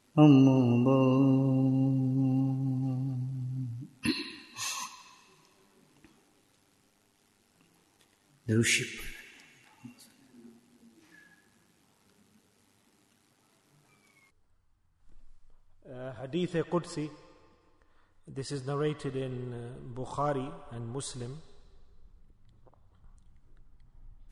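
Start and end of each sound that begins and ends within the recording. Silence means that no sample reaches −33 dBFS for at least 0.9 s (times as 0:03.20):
0:08.49–0:09.09
0:16.04–0:17.06
0:18.38–0:21.29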